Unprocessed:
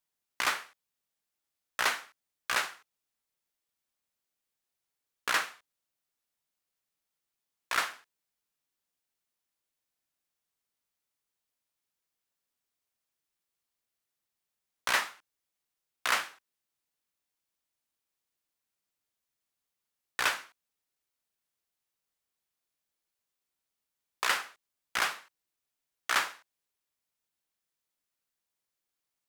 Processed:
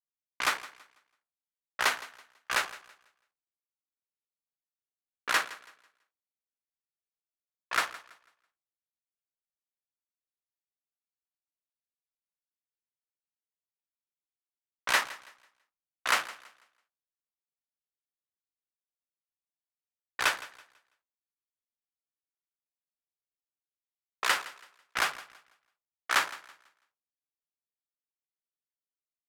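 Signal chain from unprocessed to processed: Wiener smoothing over 25 samples; low-pass opened by the level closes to 1100 Hz, open at -30.5 dBFS; bell 200 Hz -2.5 dB 0.42 oct; on a send: feedback echo 0.165 s, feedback 40%, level -16 dB; on the sum: three-band expander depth 40%

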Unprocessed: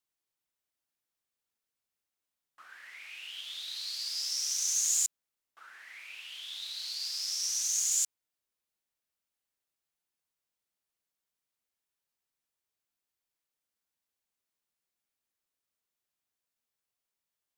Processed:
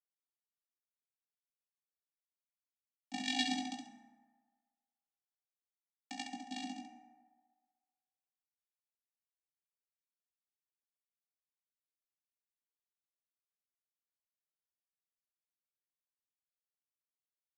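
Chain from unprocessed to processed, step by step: resonant low shelf 610 Hz -11 dB, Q 3; mistuned SSB -61 Hz 230–3400 Hz; requantised 6-bit, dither none; vocoder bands 8, square 257 Hz; fixed phaser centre 350 Hz, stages 6; doubler 15 ms -11.5 dB; on a send: early reflections 20 ms -5 dB, 67 ms -5.5 dB; on the sum: FDN reverb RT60 1.6 s, low-frequency decay 0.75×, high-frequency decay 0.4×, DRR 4 dB; gain +16 dB

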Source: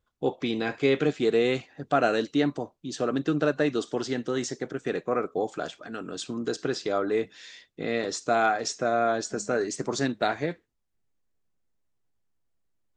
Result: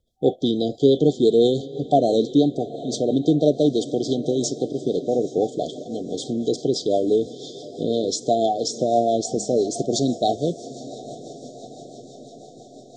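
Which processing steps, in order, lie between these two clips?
diffused feedback echo 0.803 s, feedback 64%, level -16 dB; FFT band-reject 770–3100 Hz; rotary speaker horn 6 Hz; gain +8.5 dB

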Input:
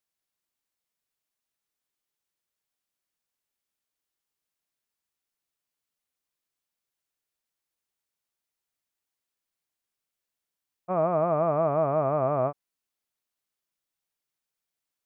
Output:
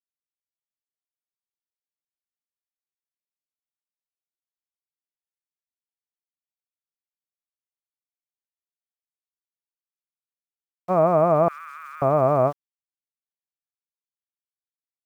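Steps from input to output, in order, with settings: sample gate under -50 dBFS; 11.48–12.02 elliptic high-pass 1400 Hz, stop band 50 dB; gain +6.5 dB

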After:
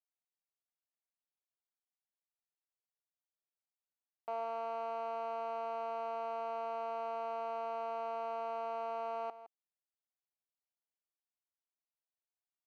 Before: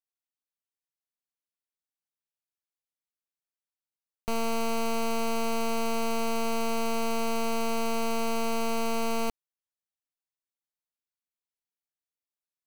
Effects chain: ladder band-pass 810 Hz, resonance 50%; on a send: echo 0.163 s -14.5 dB; on the sum: gain +3 dB

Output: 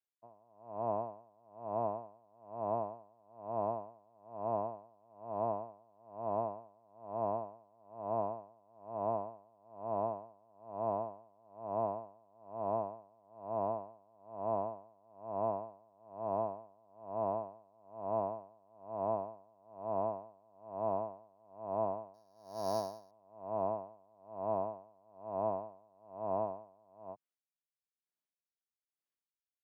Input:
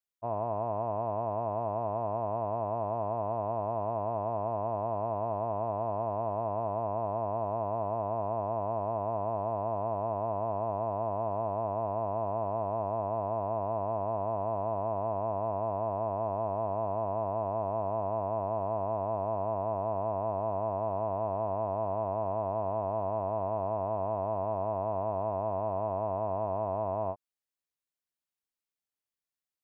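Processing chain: 22.14–23.11 sample sorter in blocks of 8 samples; HPF 130 Hz 24 dB/oct; high shelf 2300 Hz -8.5 dB; dB-linear tremolo 1.1 Hz, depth 34 dB

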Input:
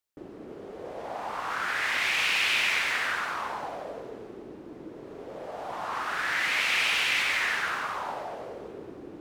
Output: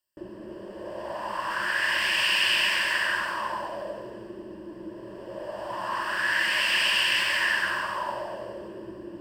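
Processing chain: ripple EQ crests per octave 1.3, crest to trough 14 dB

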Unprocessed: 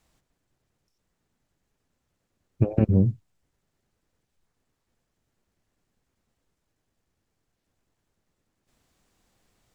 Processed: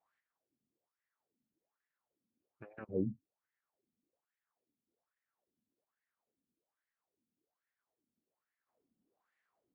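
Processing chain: wah 1.2 Hz 220–1900 Hz, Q 5.8

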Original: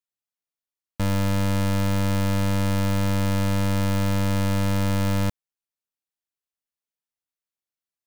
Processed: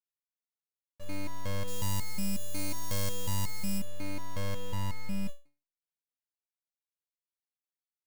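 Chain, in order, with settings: 1.67–3.78 tone controls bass +1 dB, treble +13 dB; stepped resonator 5.5 Hz 83–570 Hz

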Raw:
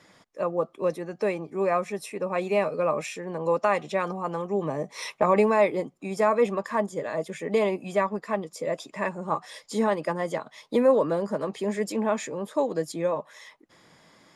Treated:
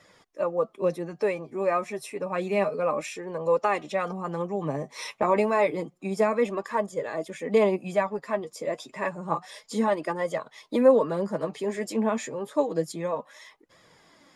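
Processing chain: flange 0.29 Hz, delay 1.5 ms, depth 7.6 ms, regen +34%; gain +3 dB

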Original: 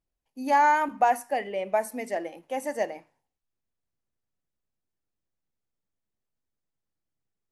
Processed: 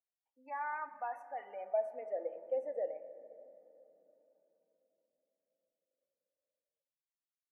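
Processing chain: spectral gate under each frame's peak -25 dB strong; fifteen-band EQ 250 Hz -9 dB, 1000 Hz -12 dB, 2500 Hz +6 dB; in parallel at +3 dB: limiter -25.5 dBFS, peak gain reduction 10 dB; on the sum: wah 0.3 Hz 500–1100 Hz, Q 6.5; on a send at -10 dB: reverb RT60 3.5 s, pre-delay 3 ms; on the sum: gain -5.5 dB

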